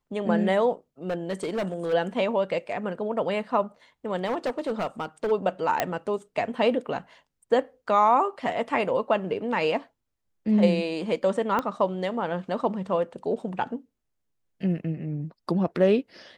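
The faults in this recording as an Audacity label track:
1.100000	1.940000	clipped -24 dBFS
4.250000	5.320000	clipped -23 dBFS
5.800000	5.800000	pop -8 dBFS
11.590000	11.590000	pop -14 dBFS

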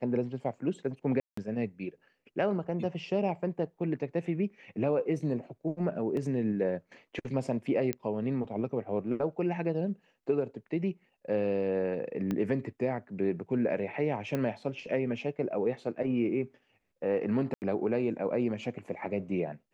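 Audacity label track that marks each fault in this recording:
1.200000	1.370000	gap 0.174 s
6.170000	6.170000	gap 2.6 ms
7.930000	7.930000	pop -16 dBFS
12.310000	12.310000	pop -20 dBFS
14.350000	14.350000	pop -19 dBFS
17.540000	17.620000	gap 79 ms

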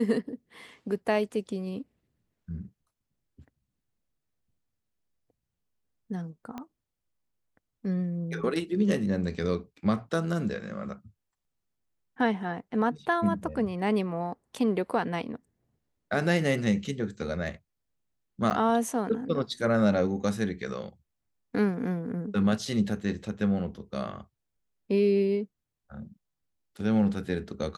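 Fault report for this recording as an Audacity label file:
6.580000	6.580000	pop -24 dBFS
18.500000	18.510000	gap 7.9 ms

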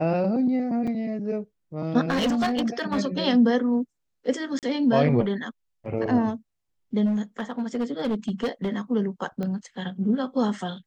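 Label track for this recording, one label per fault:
0.870000	0.880000	gap 5.5 ms
2.100000	2.980000	clipped -20 dBFS
4.590000	4.630000	gap 38 ms
7.050000	8.780000	clipped -21 dBFS
9.430000	9.430000	pop -20 dBFS

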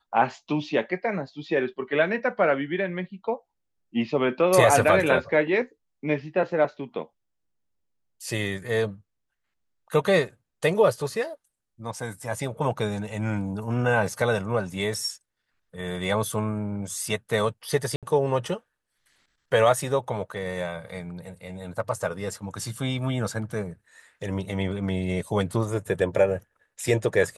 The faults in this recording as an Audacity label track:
17.960000	18.030000	gap 67 ms

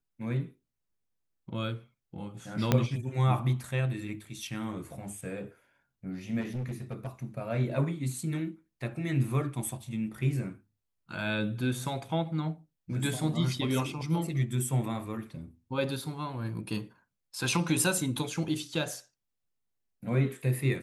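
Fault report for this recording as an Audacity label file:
2.720000	2.720000	pop -9 dBFS
6.400000	7.080000	clipped -31 dBFS

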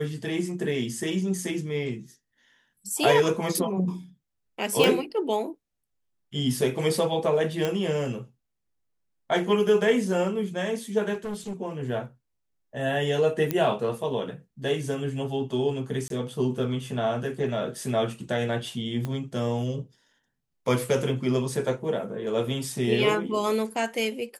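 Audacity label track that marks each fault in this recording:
4.840000	4.840000	pop
7.650000	7.650000	pop -14 dBFS
11.130000	11.530000	clipped -29 dBFS
13.510000	13.510000	pop -11 dBFS
16.080000	16.100000	gap 22 ms
19.050000	19.050000	pop -18 dBFS

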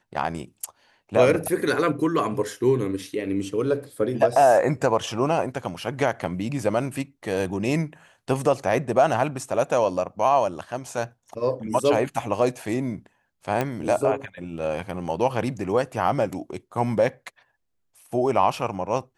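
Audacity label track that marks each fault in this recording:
13.610000	13.610000	pop -11 dBFS

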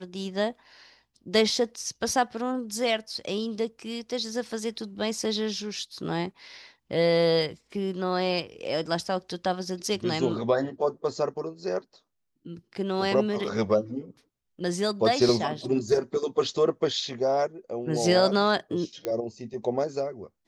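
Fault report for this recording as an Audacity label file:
19.050000	19.050000	pop -16 dBFS

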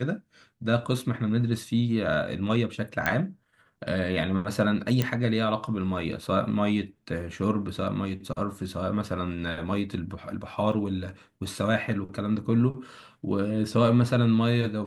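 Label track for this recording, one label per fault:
3.060000	3.060000	pop -11 dBFS
5.020000	5.020000	pop -11 dBFS
10.720000	10.720000	gap 3.9 ms

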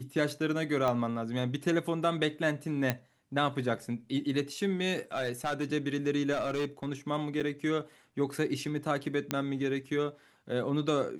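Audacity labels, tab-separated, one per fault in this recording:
0.880000	0.880000	pop -18 dBFS
2.900000	2.900000	pop -13 dBFS
5.140000	5.730000	clipped -26 dBFS
6.320000	6.890000	clipped -27 dBFS
7.400000	7.410000	gap 6.1 ms
9.310000	9.310000	pop -13 dBFS

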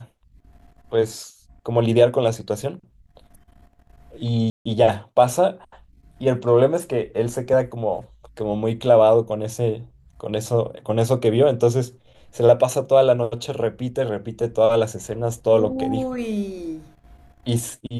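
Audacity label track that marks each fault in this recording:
4.500000	4.660000	gap 0.155 s

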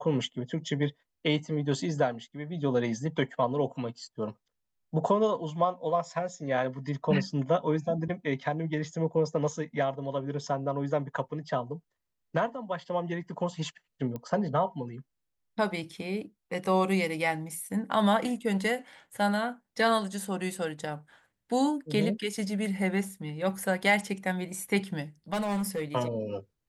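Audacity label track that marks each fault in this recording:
14.160000	14.160000	pop -24 dBFS
25.330000	25.820000	clipped -26.5 dBFS

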